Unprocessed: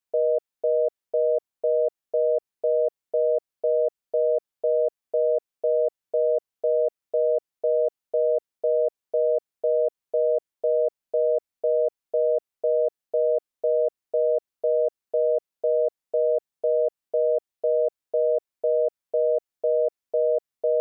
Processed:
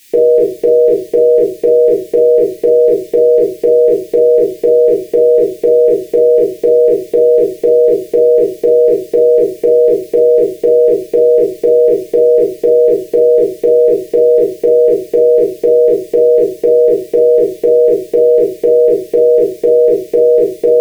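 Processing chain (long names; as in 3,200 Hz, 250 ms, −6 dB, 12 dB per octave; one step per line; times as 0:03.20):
drawn EQ curve 260 Hz 0 dB, 380 Hz +9 dB, 540 Hz −25 dB, 830 Hz −19 dB, 1,300 Hz −22 dB, 1,900 Hz +10 dB
rectangular room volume 130 cubic metres, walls furnished, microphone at 2.2 metres
boost into a limiter +33 dB
level −1 dB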